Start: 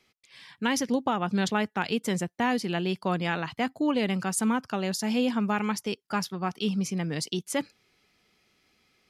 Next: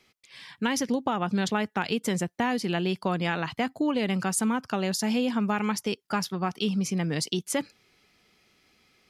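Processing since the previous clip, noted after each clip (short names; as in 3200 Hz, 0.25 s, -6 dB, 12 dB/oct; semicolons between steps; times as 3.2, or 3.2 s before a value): compressor 3:1, threshold -27 dBFS, peak gain reduction 5.5 dB; gain +3.5 dB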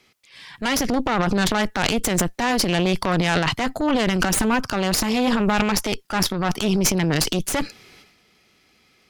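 added harmonics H 6 -12 dB, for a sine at -11.5 dBFS; transient shaper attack -5 dB, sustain +11 dB; gain +4.5 dB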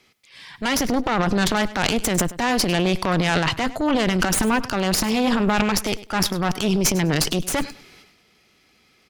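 feedback echo 0.101 s, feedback 20%, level -17 dB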